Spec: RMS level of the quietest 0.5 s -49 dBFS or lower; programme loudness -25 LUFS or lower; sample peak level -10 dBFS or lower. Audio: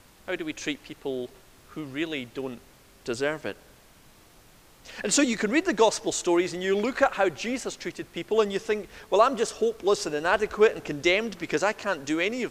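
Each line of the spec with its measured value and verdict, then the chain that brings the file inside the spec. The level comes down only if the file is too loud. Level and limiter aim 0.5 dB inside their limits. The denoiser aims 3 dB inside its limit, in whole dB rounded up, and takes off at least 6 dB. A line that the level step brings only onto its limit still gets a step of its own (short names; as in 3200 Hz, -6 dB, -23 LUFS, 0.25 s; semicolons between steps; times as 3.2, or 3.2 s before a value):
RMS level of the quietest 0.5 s -55 dBFS: OK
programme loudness -26.5 LUFS: OK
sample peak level -7.0 dBFS: fail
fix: limiter -10.5 dBFS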